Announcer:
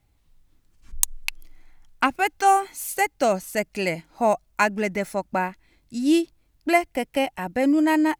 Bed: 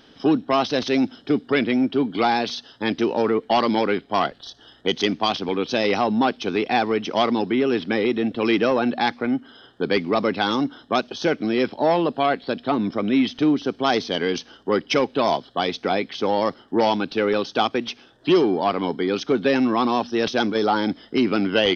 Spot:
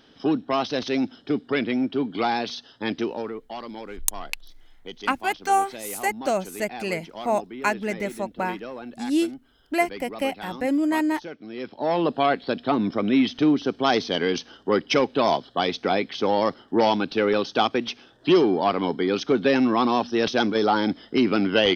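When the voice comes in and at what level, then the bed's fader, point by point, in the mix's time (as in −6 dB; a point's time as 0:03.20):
3.05 s, −3.0 dB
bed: 0:02.99 −4 dB
0:03.46 −16.5 dB
0:11.46 −16.5 dB
0:12.06 −0.5 dB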